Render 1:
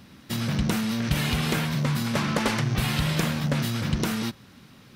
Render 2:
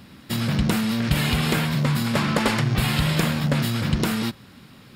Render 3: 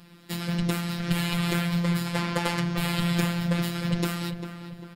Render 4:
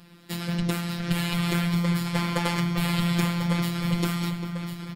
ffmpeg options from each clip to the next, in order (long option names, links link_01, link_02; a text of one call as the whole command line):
ffmpeg -i in.wav -af "bandreject=frequency=6000:width=7.2,volume=3.5dB" out.wav
ffmpeg -i in.wav -filter_complex "[0:a]asplit=2[link_01][link_02];[link_02]adelay=397,lowpass=frequency=2400:poles=1,volume=-9dB,asplit=2[link_03][link_04];[link_04]adelay=397,lowpass=frequency=2400:poles=1,volume=0.45,asplit=2[link_05][link_06];[link_06]adelay=397,lowpass=frequency=2400:poles=1,volume=0.45,asplit=2[link_07][link_08];[link_08]adelay=397,lowpass=frequency=2400:poles=1,volume=0.45,asplit=2[link_09][link_10];[link_10]adelay=397,lowpass=frequency=2400:poles=1,volume=0.45[link_11];[link_01][link_03][link_05][link_07][link_09][link_11]amix=inputs=6:normalize=0,afftfilt=real='hypot(re,im)*cos(PI*b)':imag='0':win_size=1024:overlap=0.75,volume=-2dB" out.wav
ffmpeg -i in.wav -af "aecho=1:1:1044:0.355" out.wav